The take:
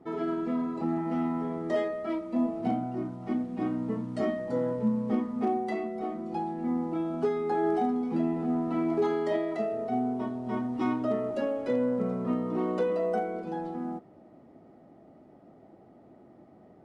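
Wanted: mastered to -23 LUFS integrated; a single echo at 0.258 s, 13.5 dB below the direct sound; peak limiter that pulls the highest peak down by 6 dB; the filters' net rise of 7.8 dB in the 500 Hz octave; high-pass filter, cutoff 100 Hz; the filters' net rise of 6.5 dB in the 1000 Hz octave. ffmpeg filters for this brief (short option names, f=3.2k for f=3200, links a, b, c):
-af "highpass=100,equalizer=f=500:t=o:g=8.5,equalizer=f=1k:t=o:g=5,alimiter=limit=-15.5dB:level=0:latency=1,aecho=1:1:258:0.211,volume=2.5dB"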